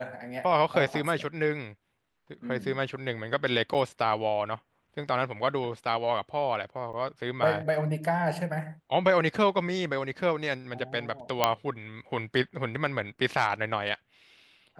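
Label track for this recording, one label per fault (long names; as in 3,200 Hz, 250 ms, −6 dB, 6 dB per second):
3.740000	3.750000	drop-out 7.7 ms
6.930000	6.940000	drop-out 6.9 ms
11.440000	11.440000	click −6 dBFS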